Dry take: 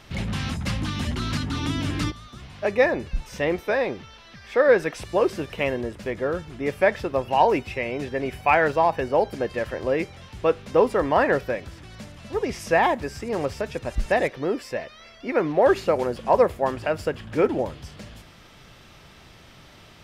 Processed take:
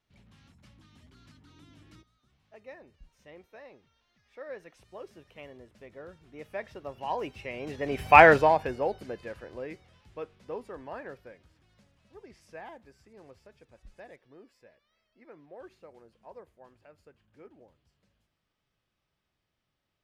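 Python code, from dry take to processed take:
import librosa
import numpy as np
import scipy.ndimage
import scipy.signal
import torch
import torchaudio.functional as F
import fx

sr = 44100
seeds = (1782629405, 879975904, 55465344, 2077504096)

y = fx.doppler_pass(x, sr, speed_mps=14, closest_m=1.8, pass_at_s=8.22)
y = fx.wow_flutter(y, sr, seeds[0], rate_hz=2.1, depth_cents=28.0)
y = y * librosa.db_to_amplitude(5.0)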